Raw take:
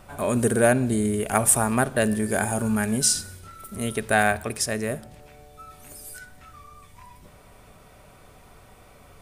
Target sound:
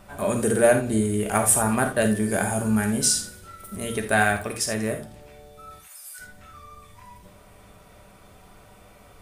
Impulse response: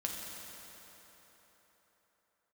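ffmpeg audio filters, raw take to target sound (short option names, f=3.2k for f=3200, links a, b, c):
-filter_complex "[0:a]asplit=3[a][b][c];[a]afade=t=out:st=5.78:d=0.02[d];[b]highpass=f=980:w=0.5412,highpass=f=980:w=1.3066,afade=t=in:st=5.78:d=0.02,afade=t=out:st=6.18:d=0.02[e];[c]afade=t=in:st=6.18:d=0.02[f];[d][e][f]amix=inputs=3:normalize=0[g];[1:a]atrim=start_sample=2205,atrim=end_sample=3969[h];[g][h]afir=irnorm=-1:irlink=0"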